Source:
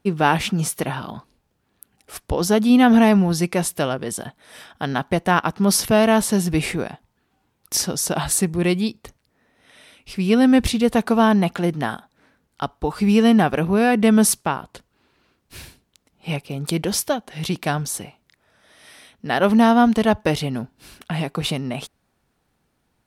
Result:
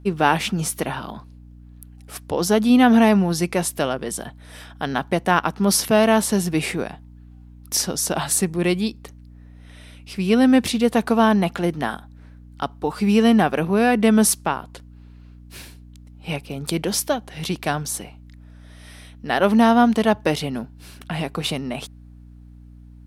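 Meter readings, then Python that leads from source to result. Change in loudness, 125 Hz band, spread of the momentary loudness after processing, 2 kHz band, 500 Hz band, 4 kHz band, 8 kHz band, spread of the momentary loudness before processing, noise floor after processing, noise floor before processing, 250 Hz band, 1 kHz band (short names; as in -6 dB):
-0.5 dB, -2.5 dB, 16 LU, 0.0 dB, 0.0 dB, 0.0 dB, 0.0 dB, 15 LU, -44 dBFS, -70 dBFS, -1.0 dB, 0.0 dB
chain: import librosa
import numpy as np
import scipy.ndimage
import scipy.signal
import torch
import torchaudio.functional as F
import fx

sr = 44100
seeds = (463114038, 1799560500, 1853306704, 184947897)

y = scipy.signal.sosfilt(scipy.signal.butter(2, 160.0, 'highpass', fs=sr, output='sos'), x)
y = fx.add_hum(y, sr, base_hz=60, snr_db=22)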